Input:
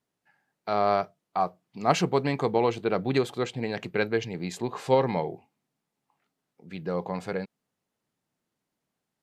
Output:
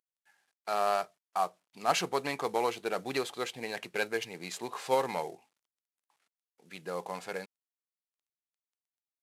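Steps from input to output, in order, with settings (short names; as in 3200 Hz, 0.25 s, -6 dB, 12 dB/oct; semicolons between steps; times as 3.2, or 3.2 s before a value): CVSD 64 kbps; HPF 910 Hz 6 dB/oct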